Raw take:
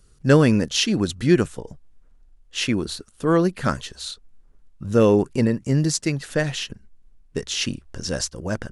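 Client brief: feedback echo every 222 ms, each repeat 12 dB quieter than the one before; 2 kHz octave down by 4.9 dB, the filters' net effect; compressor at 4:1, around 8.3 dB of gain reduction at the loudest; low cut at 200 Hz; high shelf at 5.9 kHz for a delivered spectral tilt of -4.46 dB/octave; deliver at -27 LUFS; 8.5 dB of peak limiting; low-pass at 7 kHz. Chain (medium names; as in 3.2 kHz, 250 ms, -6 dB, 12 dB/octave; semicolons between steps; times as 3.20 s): high-pass 200 Hz; low-pass 7 kHz; peaking EQ 2 kHz -6 dB; treble shelf 5.9 kHz -5.5 dB; compression 4:1, threshold -22 dBFS; peak limiter -19 dBFS; feedback delay 222 ms, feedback 25%, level -12 dB; trim +4 dB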